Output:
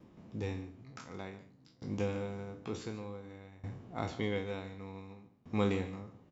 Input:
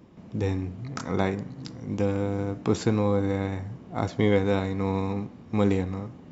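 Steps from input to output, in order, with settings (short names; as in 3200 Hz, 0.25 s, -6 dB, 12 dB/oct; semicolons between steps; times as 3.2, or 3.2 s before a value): spectral trails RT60 0.38 s; notches 60/120/180/240/300 Hz; on a send: echo 0.145 s -13.5 dB; on the sum: dynamic EQ 2800 Hz, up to +6 dB, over -48 dBFS, Q 1.3; dB-ramp tremolo decaying 0.55 Hz, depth 21 dB; gain -6 dB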